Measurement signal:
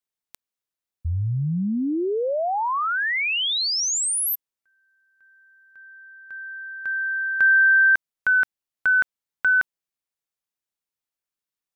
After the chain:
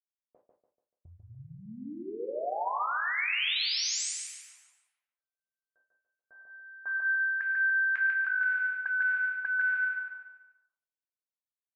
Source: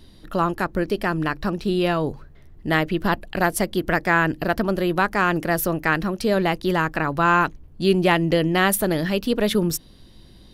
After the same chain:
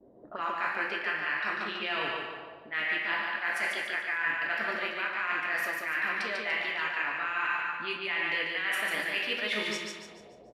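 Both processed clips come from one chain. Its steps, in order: HPF 49 Hz; two-slope reverb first 0.74 s, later 2.7 s, from -24 dB, DRR 0.5 dB; auto-wah 540–2200 Hz, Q 3.1, up, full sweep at -20.5 dBFS; reverse; compressor 16:1, threshold -35 dBFS; reverse; gate with hold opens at -59 dBFS, closes at -62 dBFS, hold 34 ms, range -21 dB; low-pass opened by the level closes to 650 Hz, open at -36 dBFS; on a send: feedback echo 0.145 s, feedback 40%, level -3 dB; on the sum: gain +6.5 dB

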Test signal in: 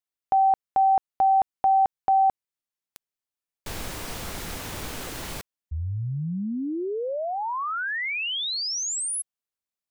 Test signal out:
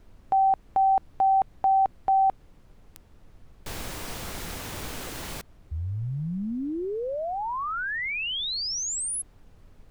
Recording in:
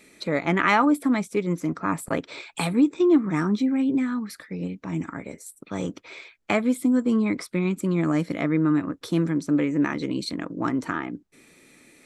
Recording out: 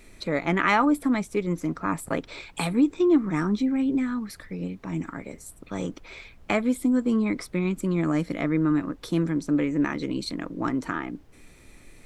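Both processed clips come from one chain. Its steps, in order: added noise brown -49 dBFS; gain -1.5 dB

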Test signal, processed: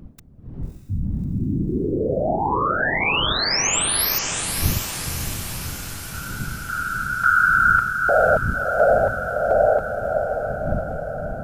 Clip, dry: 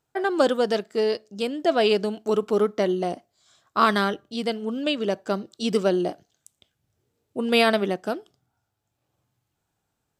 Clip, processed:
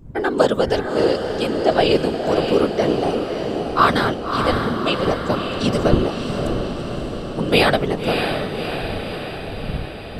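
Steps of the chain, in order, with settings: wind noise 89 Hz -36 dBFS; whisperiser; diffused feedback echo 0.603 s, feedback 63%, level -5.5 dB; gain +3.5 dB

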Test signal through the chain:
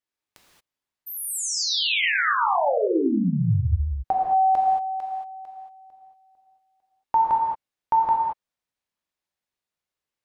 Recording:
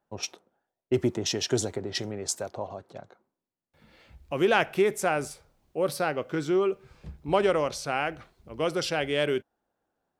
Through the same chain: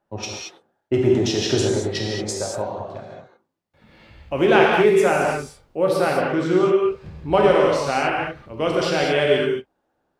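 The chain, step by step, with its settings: LPF 3700 Hz 6 dB/oct; non-linear reverb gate 0.25 s flat, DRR -2.5 dB; gain +4.5 dB

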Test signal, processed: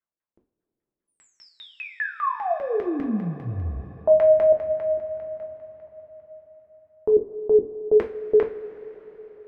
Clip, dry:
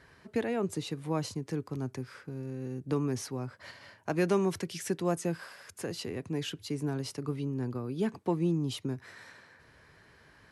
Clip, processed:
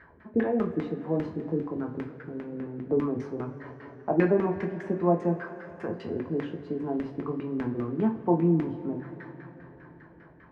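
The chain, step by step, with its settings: LFO low-pass saw down 5 Hz 300–1900 Hz; two-slope reverb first 0.3 s, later 4.8 s, from -20 dB, DRR 1.5 dB

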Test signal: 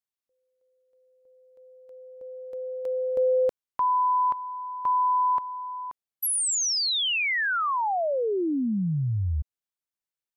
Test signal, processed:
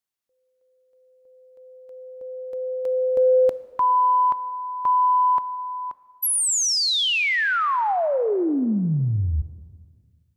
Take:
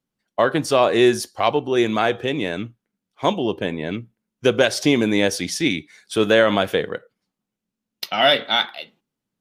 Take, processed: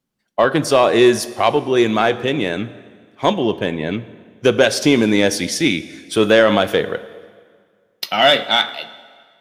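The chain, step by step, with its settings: soft clip -4.5 dBFS; plate-style reverb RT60 1.9 s, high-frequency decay 0.85×, DRR 14.5 dB; gain +4 dB

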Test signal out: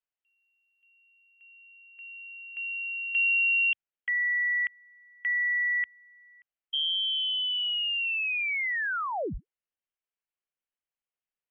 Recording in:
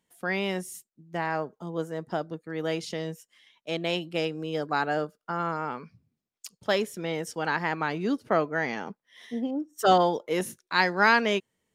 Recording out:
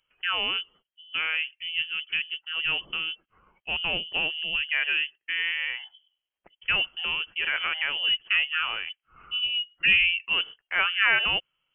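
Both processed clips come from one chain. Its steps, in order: in parallel at -3 dB: limiter -18.5 dBFS; on the sum: inverted band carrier 3200 Hz; fifteen-band EQ 100 Hz -10 dB, 250 Hz -7 dB, 1000 Hz -3 dB; gain -2.5 dB

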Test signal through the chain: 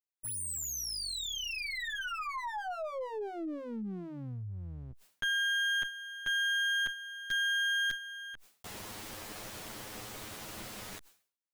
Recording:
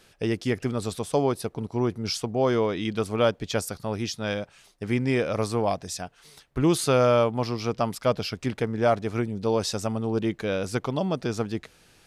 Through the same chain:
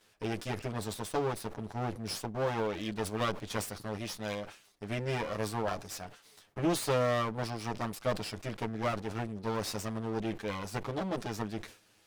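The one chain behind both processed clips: minimum comb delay 9.5 ms; low shelf 100 Hz -8.5 dB; sustainer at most 130 dB/s; gain -6.5 dB

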